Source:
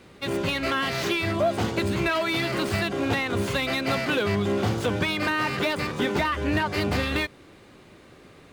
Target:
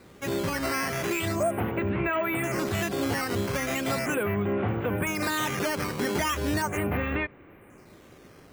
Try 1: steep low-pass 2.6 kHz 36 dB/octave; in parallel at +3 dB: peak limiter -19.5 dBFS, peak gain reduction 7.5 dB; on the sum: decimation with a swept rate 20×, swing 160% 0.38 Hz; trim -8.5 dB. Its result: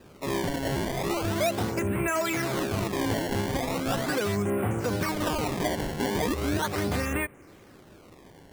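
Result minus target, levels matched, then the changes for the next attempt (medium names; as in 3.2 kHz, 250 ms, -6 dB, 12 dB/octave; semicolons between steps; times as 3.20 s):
decimation with a swept rate: distortion +6 dB
change: decimation with a swept rate 7×, swing 160% 0.38 Hz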